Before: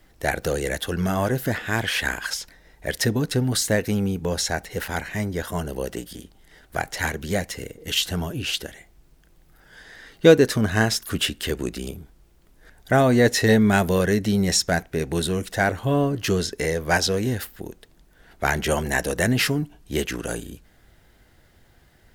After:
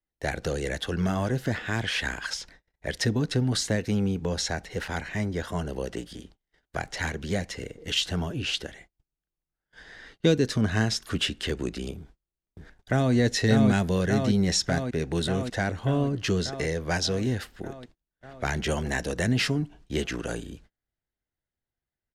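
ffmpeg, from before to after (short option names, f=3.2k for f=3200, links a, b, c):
-filter_complex "[0:a]asplit=2[a][b];[b]afade=t=in:st=11.97:d=0.01,afade=t=out:st=13.13:d=0.01,aecho=0:1:590|1180|1770|2360|2950|3540|4130|4720|5310|5900|6490|7080:0.749894|0.524926|0.367448|0.257214|0.18005|0.126035|0.0882243|0.061757|0.0432299|0.0302609|0.0211827|0.0148279[c];[a][c]amix=inputs=2:normalize=0,agate=range=-33dB:threshold=-47dB:ratio=16:detection=peak,acrossover=split=290|3000[d][e][f];[e]acompressor=threshold=-28dB:ratio=2.5[g];[d][g][f]amix=inputs=3:normalize=0,lowpass=6.3k,volume=-2dB"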